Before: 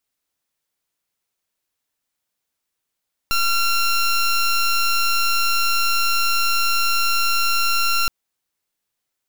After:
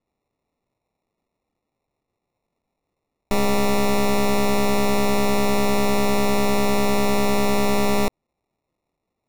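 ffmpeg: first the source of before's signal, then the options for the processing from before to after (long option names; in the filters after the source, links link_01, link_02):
-f lavfi -i "aevalsrc='0.126*(2*lt(mod(1370*t,1),0.16)-1)':duration=4.77:sample_rate=44100"
-af "acrusher=samples=28:mix=1:aa=0.000001"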